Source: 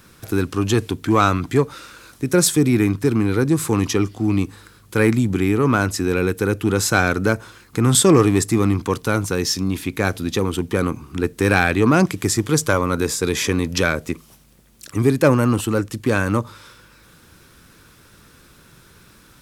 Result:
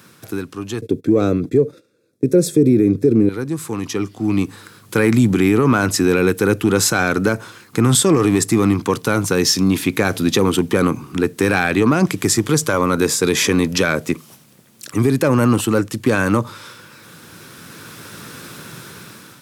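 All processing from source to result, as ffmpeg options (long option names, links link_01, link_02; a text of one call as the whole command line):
ffmpeg -i in.wav -filter_complex "[0:a]asettb=1/sr,asplit=3[link_01][link_02][link_03];[link_01]atrim=end=0.814[link_04];[link_02]atrim=start=0.81:end=3.29,asetpts=PTS-STARTPTS,afade=type=in:duration=0.004:curve=qsin,afade=type=out:start_time=2.476:duration=0.004:curve=qsin,agate=range=-19dB:threshold=-37dB:ratio=16:release=100:detection=peak,asuperstop=centerf=3000:order=8:qfactor=7.8,lowshelf=frequency=670:width_type=q:width=3:gain=11.5[link_05];[link_03]atrim=start=3.286[link_06];[link_04][link_05]acrossfade=duration=0.004:curve1=hsin:curve2=qsin[link_07];[link_07][link_06]acrossfade=duration=0.004:curve1=qsin:curve2=hsin,highpass=frequency=110:width=0.5412,highpass=frequency=110:width=1.3066,dynaudnorm=framelen=420:gausssize=5:maxgain=11.5dB,alimiter=level_in=7.5dB:limit=-1dB:release=50:level=0:latency=1,volume=-4dB" out.wav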